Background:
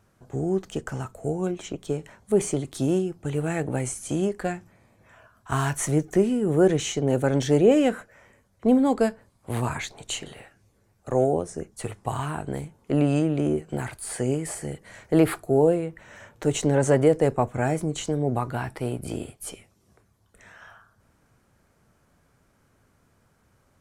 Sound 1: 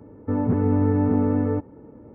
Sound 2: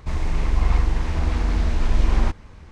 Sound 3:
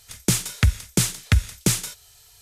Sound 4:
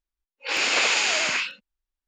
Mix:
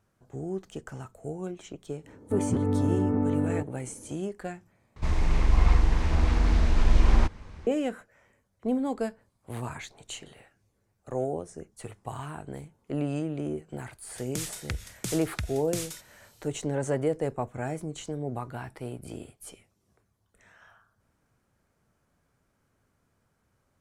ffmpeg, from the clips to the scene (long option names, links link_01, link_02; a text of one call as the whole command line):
ffmpeg -i bed.wav -i cue0.wav -i cue1.wav -i cue2.wav -filter_complex "[0:a]volume=-8.5dB[link_01];[3:a]acompressor=threshold=-19dB:ratio=6:attack=3.2:release=140:knee=1:detection=peak[link_02];[link_01]asplit=2[link_03][link_04];[link_03]atrim=end=4.964[link_05];[2:a]atrim=end=2.71,asetpts=PTS-STARTPTS,volume=-1.5dB[link_06];[link_04]atrim=start=7.666[link_07];[1:a]atrim=end=2.14,asetpts=PTS-STARTPTS,volume=-5.5dB,afade=type=in:duration=0.05,afade=type=out:start_time=2.09:duration=0.05,adelay=2030[link_08];[link_02]atrim=end=2.41,asetpts=PTS-STARTPTS,volume=-9dB,afade=type=in:duration=0.004:curve=hsin,afade=type=out:start_time=2.406:duration=0.004:curve=hsin,adelay=14070[link_09];[link_05][link_06]acrossfade=duration=0.004:curve1=hsin:curve2=hsin[link_10];[link_10][link_07]acrossfade=duration=0.004:curve1=hsin:curve2=hsin[link_11];[link_11][link_08][link_09]amix=inputs=3:normalize=0" out.wav